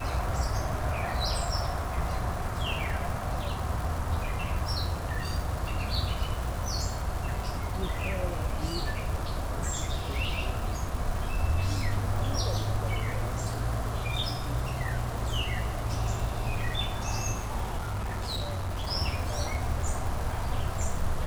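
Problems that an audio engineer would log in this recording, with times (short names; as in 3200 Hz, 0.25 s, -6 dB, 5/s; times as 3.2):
crackle 310/s -35 dBFS
17.77–18.89 clipped -28.5 dBFS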